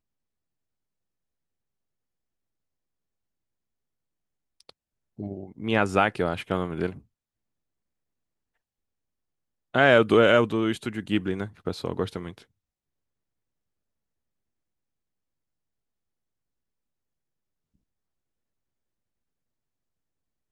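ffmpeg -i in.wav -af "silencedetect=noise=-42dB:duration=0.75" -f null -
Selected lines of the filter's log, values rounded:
silence_start: 0.00
silence_end: 4.61 | silence_duration: 4.61
silence_start: 6.99
silence_end: 9.74 | silence_duration: 2.75
silence_start: 12.42
silence_end: 20.51 | silence_duration: 8.09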